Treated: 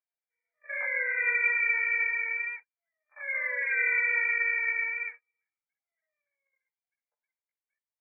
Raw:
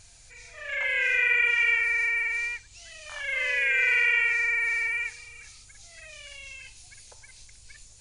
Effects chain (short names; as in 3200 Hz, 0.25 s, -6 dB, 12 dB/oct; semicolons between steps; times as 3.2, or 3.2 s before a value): chorus voices 4, 0.29 Hz, delay 17 ms, depth 2.8 ms; gate -40 dBFS, range -35 dB; brick-wall FIR band-pass 420–2400 Hz